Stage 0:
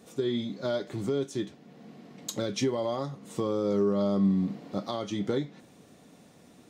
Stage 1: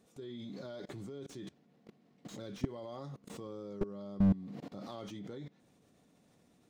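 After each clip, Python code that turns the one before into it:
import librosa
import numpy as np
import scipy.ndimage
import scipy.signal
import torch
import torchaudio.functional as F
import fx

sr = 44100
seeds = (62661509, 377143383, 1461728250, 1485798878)

y = fx.low_shelf(x, sr, hz=86.0, db=7.0)
y = fx.level_steps(y, sr, step_db=23)
y = fx.slew_limit(y, sr, full_power_hz=11.0)
y = F.gain(torch.from_numpy(y), 1.5).numpy()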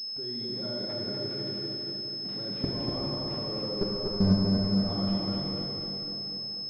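y = fx.echo_feedback(x, sr, ms=244, feedback_pct=47, wet_db=-4)
y = fx.rev_plate(y, sr, seeds[0], rt60_s=3.9, hf_ratio=0.85, predelay_ms=0, drr_db=-3.0)
y = fx.pwm(y, sr, carrier_hz=5200.0)
y = F.gain(torch.from_numpy(y), 3.0).numpy()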